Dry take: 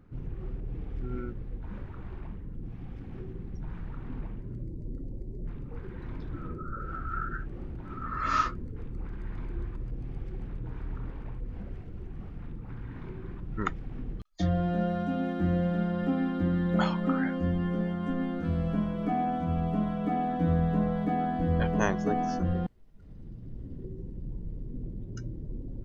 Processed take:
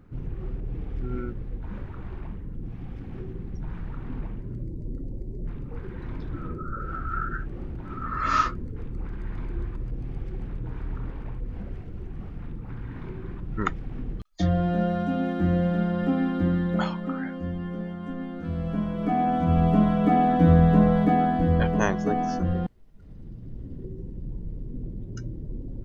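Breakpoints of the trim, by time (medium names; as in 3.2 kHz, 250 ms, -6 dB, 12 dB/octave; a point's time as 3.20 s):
16.50 s +4 dB
17.07 s -3 dB
18.30 s -3 dB
19.64 s +9 dB
20.97 s +9 dB
21.84 s +3 dB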